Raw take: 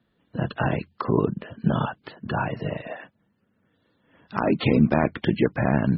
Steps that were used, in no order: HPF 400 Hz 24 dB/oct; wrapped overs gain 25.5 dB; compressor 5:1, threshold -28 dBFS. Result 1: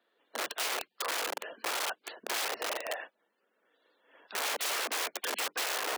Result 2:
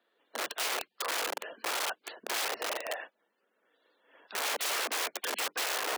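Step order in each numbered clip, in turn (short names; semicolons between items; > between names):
wrapped overs > HPF > compressor; wrapped overs > compressor > HPF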